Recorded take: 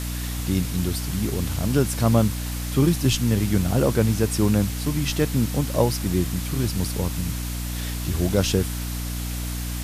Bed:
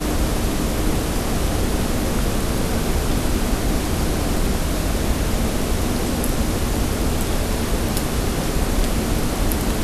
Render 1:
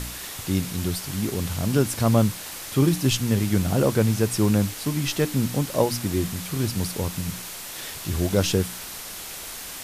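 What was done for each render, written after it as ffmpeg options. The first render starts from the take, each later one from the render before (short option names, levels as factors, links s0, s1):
-af "bandreject=f=60:t=h:w=4,bandreject=f=120:t=h:w=4,bandreject=f=180:t=h:w=4,bandreject=f=240:t=h:w=4,bandreject=f=300:t=h:w=4"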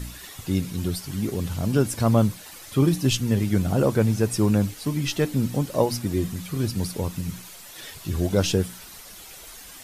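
-af "afftdn=nr=10:nf=-37"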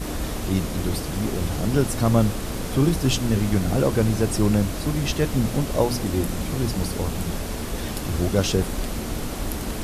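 -filter_complex "[1:a]volume=0.398[s0];[0:a][s0]amix=inputs=2:normalize=0"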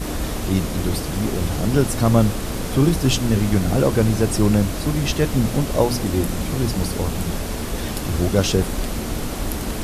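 -af "volume=1.41"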